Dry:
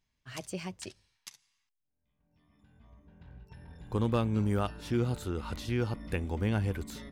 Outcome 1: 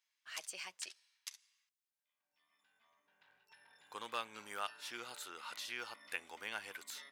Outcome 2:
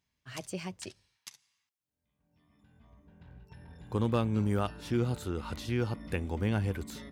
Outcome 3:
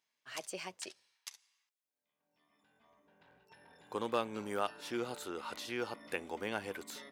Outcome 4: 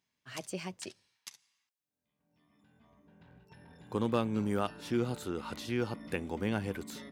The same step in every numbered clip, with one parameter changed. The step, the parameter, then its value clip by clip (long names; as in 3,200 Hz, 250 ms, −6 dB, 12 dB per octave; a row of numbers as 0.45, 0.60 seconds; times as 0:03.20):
high-pass filter, corner frequency: 1,300, 59, 470, 170 Hertz